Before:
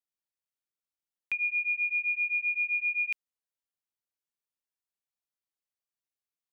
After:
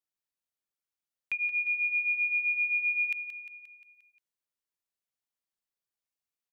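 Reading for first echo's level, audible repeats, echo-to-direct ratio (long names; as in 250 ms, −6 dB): −11.0 dB, 5, −9.5 dB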